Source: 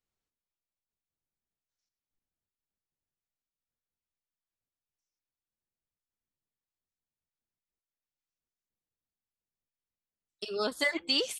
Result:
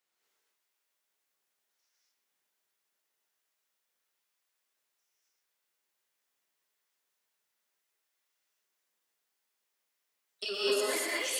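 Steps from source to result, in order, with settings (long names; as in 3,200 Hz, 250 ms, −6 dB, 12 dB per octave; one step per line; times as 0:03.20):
Bessel high-pass filter 540 Hz, order 2
compressor whose output falls as the input rises −41 dBFS, ratio −1
parametric band 1,900 Hz +2.5 dB 0.8 octaves
reverb whose tail is shaped and stops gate 270 ms rising, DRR −6 dB
feedback echo at a low word length 120 ms, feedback 55%, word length 9 bits, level −8 dB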